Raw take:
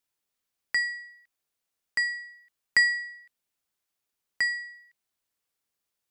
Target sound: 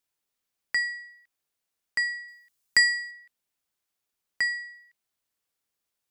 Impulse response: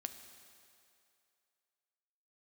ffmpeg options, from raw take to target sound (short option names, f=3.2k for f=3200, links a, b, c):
-filter_complex "[0:a]asettb=1/sr,asplit=3[a][b][c];[a]atrim=end=2.284[d];[b]atrim=start=2.28:end=3.11,asetpts=PTS-STARTPTS,afade=t=in:d=0.004:c=qsin,afade=t=out:st=0.826:d=0.004:c=qsin,bass=f=250:g=3,treble=f=4k:g=8[e];[c]atrim=start=3.106[f];[d][e]acrossfade=d=0.004:c1=hsin:c2=qsin[g];[g][f]acrossfade=d=0.004:c1=qsin:c2=hsin"